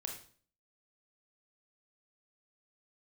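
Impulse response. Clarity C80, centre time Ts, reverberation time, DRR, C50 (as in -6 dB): 10.5 dB, 25 ms, 0.45 s, 1.5 dB, 6.0 dB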